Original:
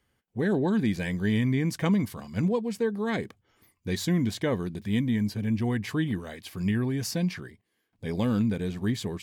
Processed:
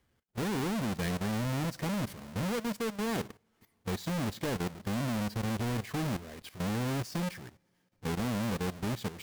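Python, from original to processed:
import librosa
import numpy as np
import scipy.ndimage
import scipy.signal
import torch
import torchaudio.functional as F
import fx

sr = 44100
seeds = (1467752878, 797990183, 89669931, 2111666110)

y = fx.halfwave_hold(x, sr)
y = fx.rev_double_slope(y, sr, seeds[0], early_s=0.51, late_s=2.4, knee_db=-21, drr_db=17.5)
y = fx.level_steps(y, sr, step_db=14)
y = y * librosa.db_to_amplitude(-3.5)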